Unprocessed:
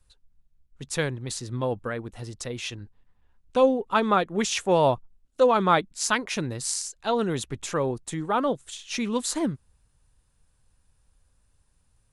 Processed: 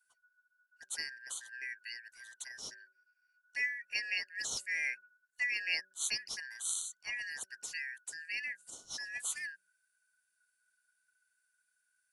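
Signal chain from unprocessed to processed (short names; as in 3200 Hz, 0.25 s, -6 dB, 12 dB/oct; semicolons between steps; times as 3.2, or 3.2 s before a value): four-band scrambler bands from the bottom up 3142; pre-emphasis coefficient 0.8; de-hum 190.5 Hz, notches 3; gain -6 dB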